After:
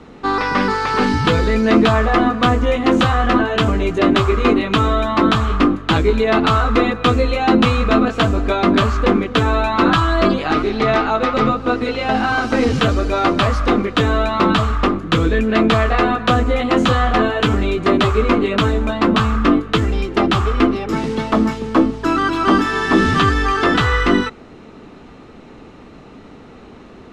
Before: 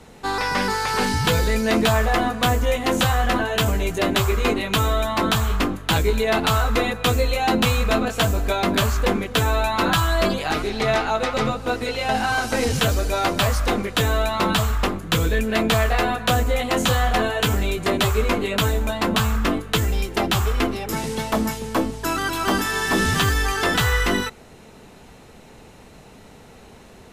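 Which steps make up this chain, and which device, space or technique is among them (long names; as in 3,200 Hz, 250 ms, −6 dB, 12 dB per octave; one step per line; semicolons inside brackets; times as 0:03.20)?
inside a cardboard box (low-pass filter 4,100 Hz 12 dB per octave; hollow resonant body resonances 290/1,200 Hz, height 9 dB, ringing for 20 ms)
level +2.5 dB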